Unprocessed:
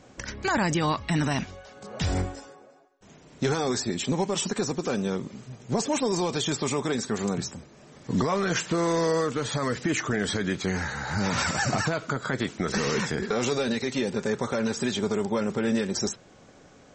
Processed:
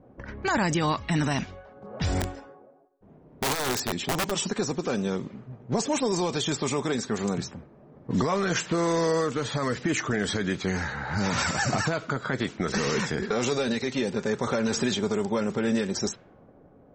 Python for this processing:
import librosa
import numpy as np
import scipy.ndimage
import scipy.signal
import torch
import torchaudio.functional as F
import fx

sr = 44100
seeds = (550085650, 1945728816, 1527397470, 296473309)

y = fx.env_lowpass(x, sr, base_hz=660.0, full_db=-22.0)
y = fx.overflow_wrap(y, sr, gain_db=20.5, at=(2.2, 4.3), fade=0.02)
y = fx.transient(y, sr, attack_db=3, sustain_db=7, at=(14.43, 14.95))